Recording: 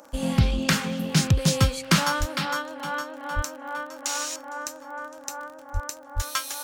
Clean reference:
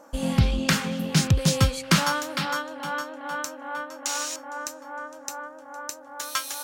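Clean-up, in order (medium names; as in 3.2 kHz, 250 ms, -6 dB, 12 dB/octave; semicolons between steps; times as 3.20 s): clip repair -9 dBFS; de-click; de-plosive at 2.19/3.35/5.73/6.15 s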